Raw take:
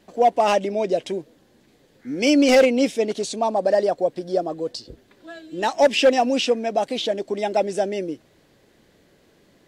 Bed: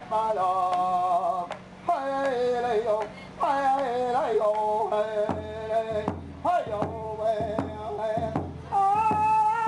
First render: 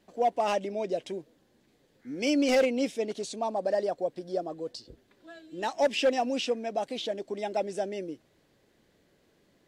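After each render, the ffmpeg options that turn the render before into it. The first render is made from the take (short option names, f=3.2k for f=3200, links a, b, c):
-af "volume=-9dB"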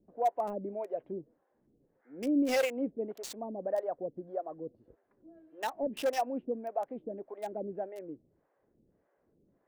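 -filter_complex "[0:a]acrossover=split=490[a][b];[a]aeval=exprs='val(0)*(1-1/2+1/2*cos(2*PI*1.7*n/s))':c=same[c];[b]aeval=exprs='val(0)*(1-1/2-1/2*cos(2*PI*1.7*n/s))':c=same[d];[c][d]amix=inputs=2:normalize=0,acrossover=split=1500[e][f];[f]aeval=exprs='val(0)*gte(abs(val(0)),0.0126)':c=same[g];[e][g]amix=inputs=2:normalize=0"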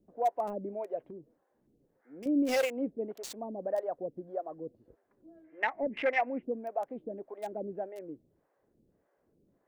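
-filter_complex "[0:a]asettb=1/sr,asplit=3[a][b][c];[a]atrim=end=1.104[d];[b]atrim=start=1.1:end=2.26,asetpts=PTS-STARTPTS,afade=t=in:d=0.004:c=qsin,afade=t=out:st=1.156:d=0.004:c=qsin,acompressor=threshold=-44dB:ratio=3:attack=3.2:release=140:knee=1:detection=peak[e];[c]atrim=start=2.256[f];[d][e]acrossfade=d=0.004:c1=hsin:c2=qsin[g];[g][f]acrossfade=d=0.004:c1=qsin:c2=hsin,asettb=1/sr,asplit=3[h][i][j];[h]atrim=end=5.444[k];[i]atrim=start=5.44:end=6.43,asetpts=PTS-STARTPTS,afade=t=in:d=0.004:c=qsin,afade=t=out:st=0.986:d=0.004:c=qsin,lowpass=f=2.1k:t=q:w=9.3[l];[j]atrim=start=6.426[m];[k][l]acrossfade=d=0.004:c1=hsin:c2=qsin[n];[n][m]acrossfade=d=0.004:c1=qsin:c2=hsin"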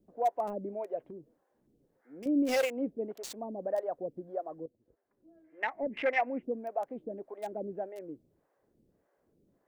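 -filter_complex "[0:a]asplit=2[a][b];[a]atrim=end=4.66,asetpts=PTS-STARTPTS,afade=t=out:st=4.656:d=0.004:c=hsin:silence=0.223872[c];[b]atrim=start=4.66,asetpts=PTS-STARTPTS,afade=t=in:d=1.49:silence=0.223872[d];[c][d]concat=n=2:v=0:a=1"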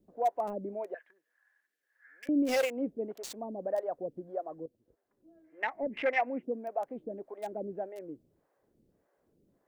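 -filter_complex "[0:a]asettb=1/sr,asplit=3[a][b][c];[a]atrim=end=0.944[d];[b]atrim=start=0.94:end=2.29,asetpts=PTS-STARTPTS,afade=t=in:d=0.004:c=qsin,afade=t=out:st=1.346:d=0.004:c=qsin,highpass=f=1.7k:t=q:w=14[e];[c]atrim=start=2.286[f];[d][e]acrossfade=d=0.004:c1=hsin:c2=qsin[g];[g][f]acrossfade=d=0.004:c1=qsin:c2=hsin,asettb=1/sr,asplit=3[h][i][j];[h]atrim=end=6.194[k];[i]atrim=start=6.19:end=6.68,asetpts=PTS-STARTPTS,afade=t=in:d=0.004:c=qsin,afade=t=out:st=0.486:d=0.004:c=qsin,highpass=130[l];[j]atrim=start=6.676[m];[k][l]acrossfade=d=0.004:c1=hsin:c2=qsin[n];[n][m]acrossfade=d=0.004:c1=qsin:c2=hsin"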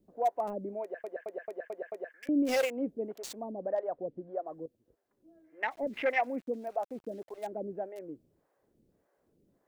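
-filter_complex "[0:a]asettb=1/sr,asplit=3[a][b][c];[a]atrim=end=3.524[d];[b]atrim=start=3.52:end=4.47,asetpts=PTS-STARTPTS,afade=t=in:d=0.004:c=qsin,afade=t=out:st=0.946:d=0.004:c=qsin,lowpass=3.2k[e];[c]atrim=start=4.466[f];[d][e]acrossfade=d=0.004:c1=hsin:c2=qsin[g];[g][f]acrossfade=d=0.004:c1=qsin:c2=hsin,asplit=3[h][i][j];[h]afade=t=out:st=5.7:d=0.02[k];[i]aeval=exprs='val(0)*gte(abs(val(0)),0.00158)':c=same,afade=t=in:st=5.7:d=0.02,afade=t=out:st=7.42:d=0.02[l];[j]afade=t=in:st=7.42:d=0.02[m];[k][l][m]amix=inputs=3:normalize=0,asplit=7[n][o][p][q][r][s][t];[n]atrim=end=1.042[u];[o]atrim=start=0.818:end=1.042[v];[p]atrim=start=0.818:end=1.042[w];[q]atrim=start=0.818:end=1.042[x];[r]atrim=start=0.818:end=1.042[y];[s]atrim=start=0.818:end=1.042[z];[t]atrim=start=2.138[aa];[u][v]acrossfade=d=0.004:c1=hsin:c2=hsin[ab];[ab][w]acrossfade=d=0.004:c1=hsin:c2=hsin[ac];[ac][x]acrossfade=d=0.004:c1=hsin:c2=hsin[ad];[ad][y]acrossfade=d=0.004:c1=hsin:c2=hsin[ae];[ae][z]acrossfade=d=0.004:c1=hsin:c2=hsin[af];[af][aa]acrossfade=d=0.004:c1=hsin:c2=hsin"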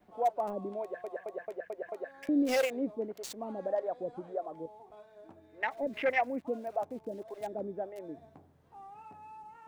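-filter_complex "[1:a]volume=-27.5dB[a];[0:a][a]amix=inputs=2:normalize=0"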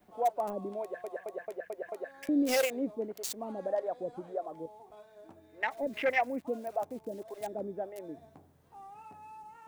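-af "highshelf=f=5.7k:g=10"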